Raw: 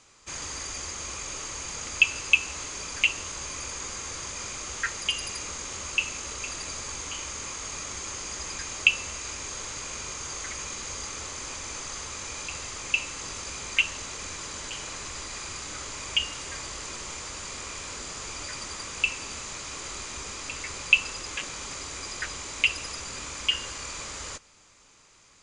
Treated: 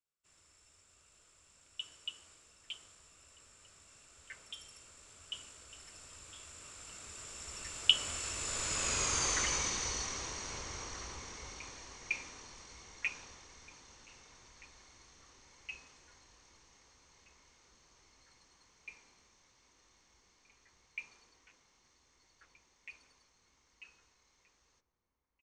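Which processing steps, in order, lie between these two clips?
Doppler pass-by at 9.17, 38 m/s, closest 20 m; outdoor echo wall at 270 m, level -7 dB; three-band expander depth 40%

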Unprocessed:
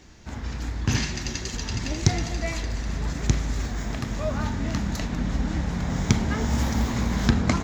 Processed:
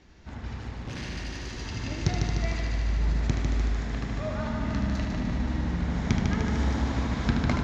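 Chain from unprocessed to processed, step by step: 0.6–1.6 hard clip -28.5 dBFS, distortion -16 dB; LPF 4300 Hz 12 dB/oct; multi-head echo 75 ms, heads first and second, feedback 73%, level -7 dB; gain -5.5 dB

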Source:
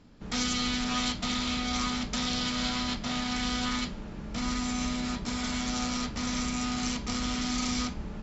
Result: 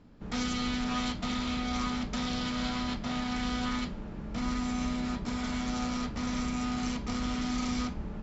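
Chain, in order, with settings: high shelf 2800 Hz -10 dB

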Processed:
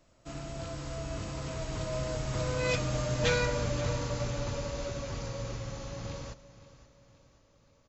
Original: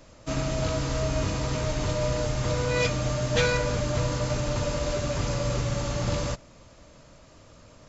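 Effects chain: Doppler pass-by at 3.22, 17 m/s, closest 20 m; feedback echo 0.526 s, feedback 47%, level -17 dB; gain -4 dB

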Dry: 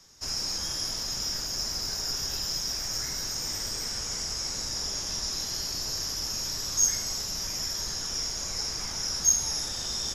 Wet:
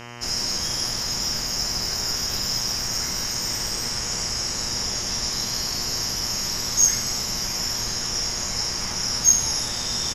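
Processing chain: bell 190 Hz +6 dB 0.22 oct; buzz 120 Hz, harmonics 26, -45 dBFS -2 dB/oct; doubler 26 ms -13.5 dB; gain +5.5 dB

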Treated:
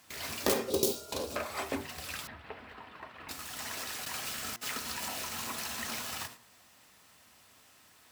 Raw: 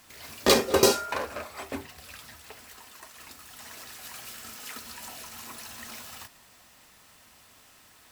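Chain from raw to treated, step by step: tracing distortion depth 0.49 ms; HPF 69 Hz; gate -52 dBFS, range -10 dB; 0.7–1.36 EQ curve 390 Hz 0 dB, 1800 Hz -19 dB, 3700 Hz +2 dB; compressor 2.5:1, threshold -39 dBFS, peak gain reduction 16 dB; 2.27–3.29 air absorption 470 m; 4.04–4.61 step gate ".xxxxxx." 181 bpm -24 dB; de-hum 117.5 Hz, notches 18; gain +6 dB

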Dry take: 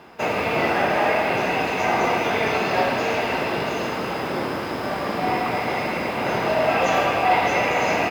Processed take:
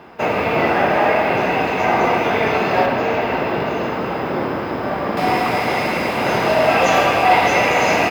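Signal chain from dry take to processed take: bell 9300 Hz -9 dB 2.3 oct, from 2.86 s -15 dB, from 5.17 s +2.5 dB; gain +5 dB

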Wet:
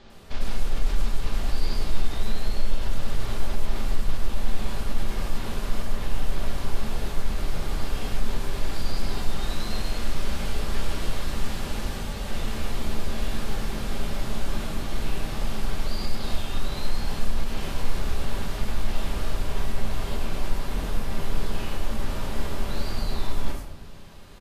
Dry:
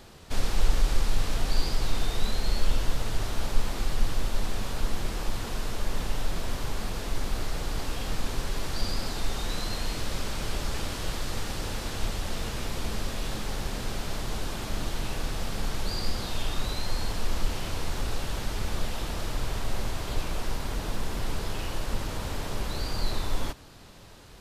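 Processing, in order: limiter -20.5 dBFS, peak gain reduction 11.5 dB; 11.87–12.28 notch comb 340 Hz; bands offset in time lows, highs 0.1 s, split 5900 Hz; shoebox room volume 250 m³, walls mixed, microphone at 1.2 m; gain -2 dB

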